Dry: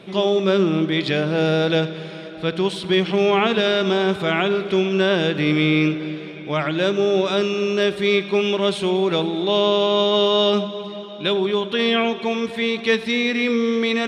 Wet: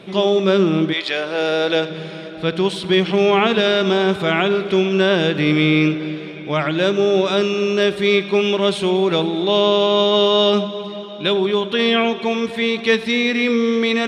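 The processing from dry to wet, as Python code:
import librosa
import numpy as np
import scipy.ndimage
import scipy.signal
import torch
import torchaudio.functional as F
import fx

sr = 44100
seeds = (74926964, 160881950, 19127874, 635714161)

y = fx.highpass(x, sr, hz=fx.line((0.92, 730.0), (1.89, 280.0)), slope=12, at=(0.92, 1.89), fade=0.02)
y = F.gain(torch.from_numpy(y), 2.5).numpy()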